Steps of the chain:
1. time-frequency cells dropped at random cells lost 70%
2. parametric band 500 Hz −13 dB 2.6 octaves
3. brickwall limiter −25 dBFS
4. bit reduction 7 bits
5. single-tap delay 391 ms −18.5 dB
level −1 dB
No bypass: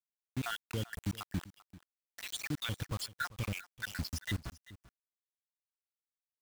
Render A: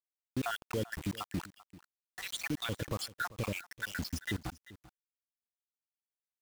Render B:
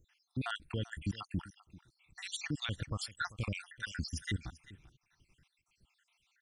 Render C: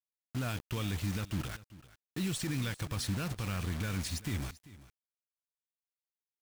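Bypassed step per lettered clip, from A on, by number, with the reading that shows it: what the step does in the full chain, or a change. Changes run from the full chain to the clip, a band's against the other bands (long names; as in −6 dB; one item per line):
2, 500 Hz band +6.0 dB
4, distortion level −11 dB
1, 2 kHz band −4.5 dB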